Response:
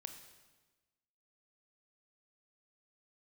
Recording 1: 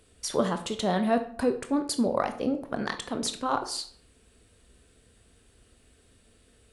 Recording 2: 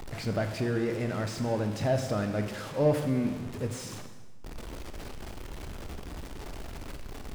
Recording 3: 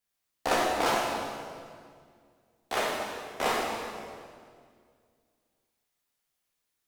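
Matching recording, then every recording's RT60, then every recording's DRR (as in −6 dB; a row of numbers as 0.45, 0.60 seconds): 2; 0.55, 1.2, 2.1 seconds; 7.5, 6.0, −5.5 decibels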